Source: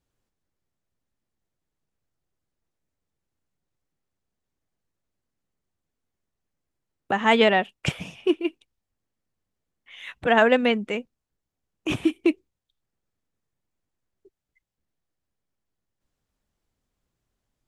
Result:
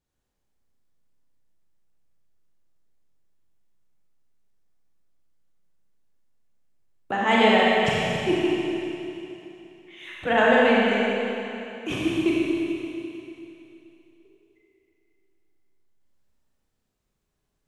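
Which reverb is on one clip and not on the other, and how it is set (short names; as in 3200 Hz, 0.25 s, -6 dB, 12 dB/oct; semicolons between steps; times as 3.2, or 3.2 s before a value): Schroeder reverb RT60 3 s, combs from 30 ms, DRR -5.5 dB; gain -4.5 dB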